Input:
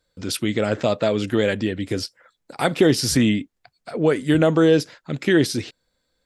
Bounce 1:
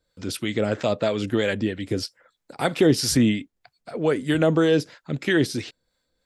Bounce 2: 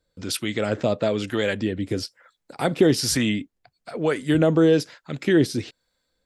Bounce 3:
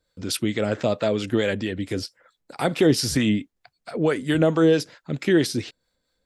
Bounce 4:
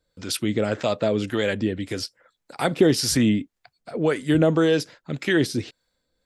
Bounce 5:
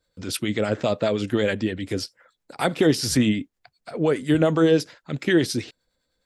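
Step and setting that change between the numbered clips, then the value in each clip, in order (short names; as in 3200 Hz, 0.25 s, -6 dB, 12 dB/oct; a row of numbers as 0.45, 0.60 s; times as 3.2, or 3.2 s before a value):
harmonic tremolo, rate: 3.1, 1.1, 4.5, 1.8, 9.7 Hz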